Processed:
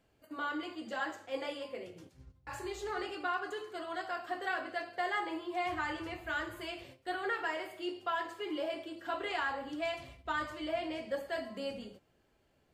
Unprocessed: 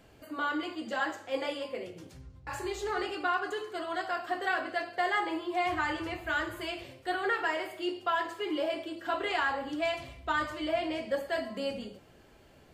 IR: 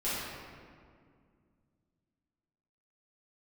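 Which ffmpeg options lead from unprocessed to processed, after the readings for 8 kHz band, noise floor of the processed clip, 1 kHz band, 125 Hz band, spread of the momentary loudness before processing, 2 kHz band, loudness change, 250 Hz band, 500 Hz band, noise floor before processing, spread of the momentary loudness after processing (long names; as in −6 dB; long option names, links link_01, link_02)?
−5.0 dB, −72 dBFS, −5.0 dB, −5.5 dB, 9 LU, −5.0 dB, −5.0 dB, −5.0 dB, −5.0 dB, −58 dBFS, 9 LU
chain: -af "agate=range=-9dB:threshold=-48dB:ratio=16:detection=peak,volume=-5dB"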